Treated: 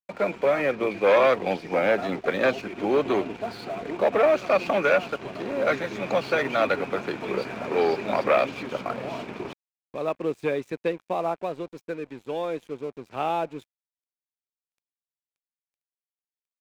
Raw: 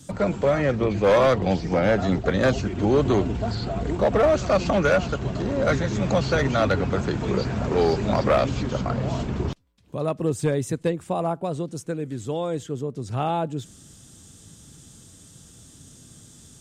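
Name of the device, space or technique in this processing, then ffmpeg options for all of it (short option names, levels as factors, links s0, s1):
pocket radio on a weak battery: -af "highpass=330,lowpass=3700,aeval=exprs='sgn(val(0))*max(abs(val(0))-0.00473,0)':c=same,equalizer=f=2400:t=o:w=0.21:g=9.5"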